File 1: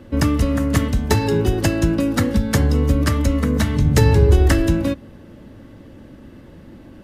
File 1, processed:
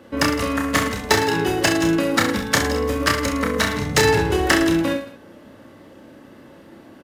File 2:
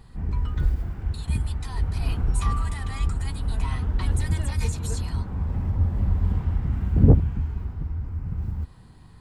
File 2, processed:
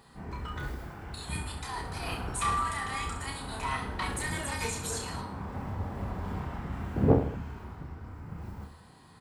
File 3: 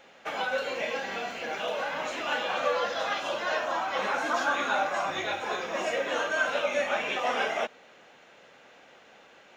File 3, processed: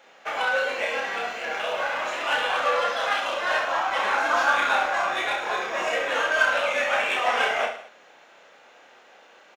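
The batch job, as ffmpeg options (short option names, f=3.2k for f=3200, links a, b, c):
-filter_complex "[0:a]highpass=f=1.1k:p=1,asplit=2[a][b];[b]adynamicsmooth=sensitivity=5.5:basefreq=1.5k,volume=1dB[c];[a][c]amix=inputs=2:normalize=0,aecho=1:1:30|66|109.2|161|223.2:0.631|0.398|0.251|0.158|0.1,volume=1dB"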